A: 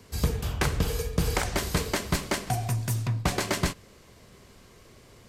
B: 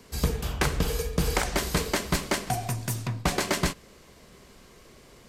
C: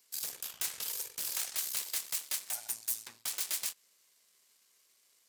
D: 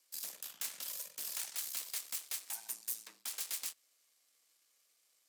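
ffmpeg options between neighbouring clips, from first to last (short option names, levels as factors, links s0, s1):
-af "equalizer=f=100:t=o:w=0.4:g=-12,volume=1.19"
-af "aeval=exprs='0.251*(cos(1*acos(clip(val(0)/0.251,-1,1)))-cos(1*PI/2))+0.1*(cos(8*acos(clip(val(0)/0.251,-1,1)))-cos(8*PI/2))':c=same,aderivative,volume=0.398"
-af "afreqshift=85,volume=0.562"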